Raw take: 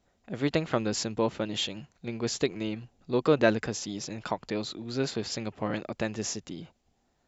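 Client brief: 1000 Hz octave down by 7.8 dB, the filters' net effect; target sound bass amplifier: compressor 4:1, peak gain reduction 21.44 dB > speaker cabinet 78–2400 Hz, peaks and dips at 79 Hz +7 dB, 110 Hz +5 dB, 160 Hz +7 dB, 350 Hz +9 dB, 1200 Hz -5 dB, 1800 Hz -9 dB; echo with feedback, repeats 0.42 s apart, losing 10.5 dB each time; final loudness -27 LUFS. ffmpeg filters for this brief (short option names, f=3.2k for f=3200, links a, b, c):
-af "equalizer=f=1k:t=o:g=-9,aecho=1:1:420|840|1260:0.299|0.0896|0.0269,acompressor=threshold=-45dB:ratio=4,highpass=f=78:w=0.5412,highpass=f=78:w=1.3066,equalizer=f=79:t=q:w=4:g=7,equalizer=f=110:t=q:w=4:g=5,equalizer=f=160:t=q:w=4:g=7,equalizer=f=350:t=q:w=4:g=9,equalizer=f=1.2k:t=q:w=4:g=-5,equalizer=f=1.8k:t=q:w=4:g=-9,lowpass=f=2.4k:w=0.5412,lowpass=f=2.4k:w=1.3066,volume=16.5dB"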